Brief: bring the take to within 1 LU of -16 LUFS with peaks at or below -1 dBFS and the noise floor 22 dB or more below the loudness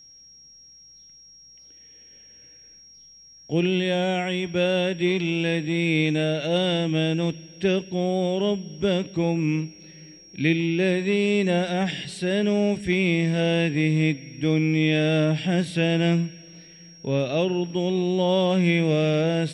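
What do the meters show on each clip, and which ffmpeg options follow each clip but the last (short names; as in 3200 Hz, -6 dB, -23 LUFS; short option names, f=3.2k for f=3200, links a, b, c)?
steady tone 5600 Hz; tone level -47 dBFS; loudness -23.5 LUFS; peak -9.5 dBFS; loudness target -16.0 LUFS
-> -af "bandreject=f=5.6k:w=30"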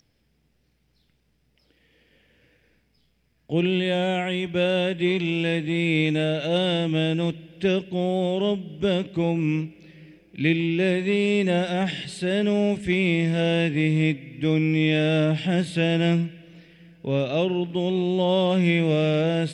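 steady tone none; loudness -23.5 LUFS; peak -9.5 dBFS; loudness target -16.0 LUFS
-> -af "volume=7.5dB"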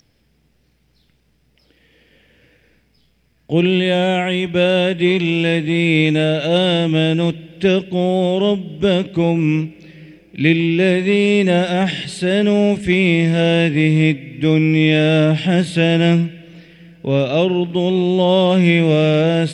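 loudness -16.0 LUFS; peak -2.0 dBFS; noise floor -60 dBFS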